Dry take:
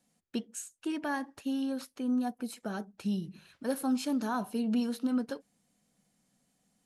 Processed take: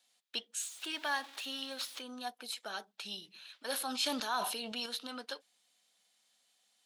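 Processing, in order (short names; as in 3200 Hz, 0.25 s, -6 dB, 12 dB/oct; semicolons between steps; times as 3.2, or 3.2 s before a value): 0.6–2.02 zero-crossing step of -46.5 dBFS; HPF 750 Hz 12 dB/oct; bell 3600 Hz +12 dB 0.94 oct; 3.68–4.86 sustainer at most 36 dB/s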